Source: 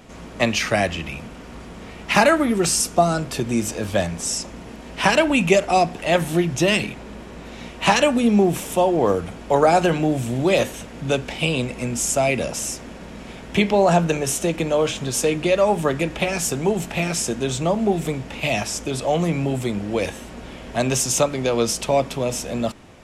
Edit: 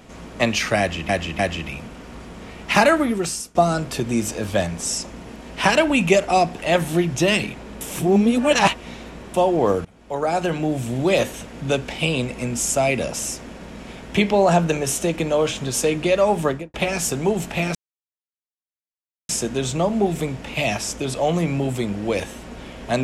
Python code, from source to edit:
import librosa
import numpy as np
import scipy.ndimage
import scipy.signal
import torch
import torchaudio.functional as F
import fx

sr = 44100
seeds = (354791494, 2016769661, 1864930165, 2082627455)

y = fx.studio_fade_out(x, sr, start_s=15.85, length_s=0.29)
y = fx.edit(y, sr, fx.repeat(start_s=0.79, length_s=0.3, count=3),
    fx.fade_out_to(start_s=2.4, length_s=0.55, floor_db=-22.5),
    fx.reverse_span(start_s=7.21, length_s=1.53),
    fx.fade_in_from(start_s=9.25, length_s=1.54, curve='qsin', floor_db=-21.0),
    fx.insert_silence(at_s=17.15, length_s=1.54), tone=tone)